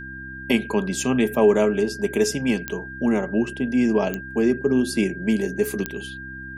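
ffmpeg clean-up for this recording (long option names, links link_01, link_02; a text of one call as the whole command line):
ffmpeg -i in.wav -af "adeclick=threshold=4,bandreject=frequency=65.5:width_type=h:width=4,bandreject=frequency=131:width_type=h:width=4,bandreject=frequency=196.5:width_type=h:width=4,bandreject=frequency=262:width_type=h:width=4,bandreject=frequency=327.5:width_type=h:width=4,bandreject=frequency=1600:width=30" out.wav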